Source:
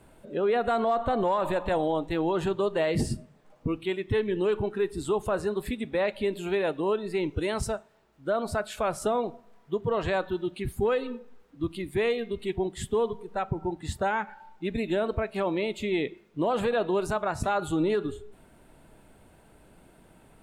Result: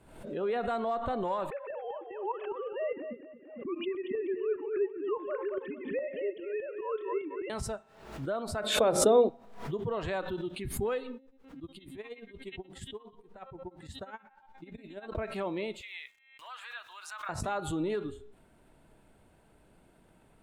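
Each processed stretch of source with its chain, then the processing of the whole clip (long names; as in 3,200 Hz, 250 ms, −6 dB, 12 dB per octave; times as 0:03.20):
0:01.50–0:07.50: three sine waves on the formant tracks + repeating echo 227 ms, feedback 29%, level −8.5 dB + shaped tremolo saw up 4.9 Hz, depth 50%
0:08.64–0:09.29: low-shelf EQ 70 Hz −11.5 dB + mains-hum notches 60/120/180/240/300/360/420 Hz + hollow resonant body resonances 290/460/3,600 Hz, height 14 dB, ringing for 20 ms
0:11.17–0:15.15: downward compressor 5 to 1, threshold −29 dBFS + tremolo with a sine in dB 8.4 Hz, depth 39 dB
0:15.81–0:17.29: high-pass filter 1,300 Hz 24 dB per octave + high-shelf EQ 7,400 Hz −9 dB + centre clipping without the shift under −57.5 dBFS
whole clip: high-shelf EQ 11,000 Hz −5.5 dB; hum removal 266.6 Hz, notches 15; background raised ahead of every attack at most 77 dB per second; level −6.5 dB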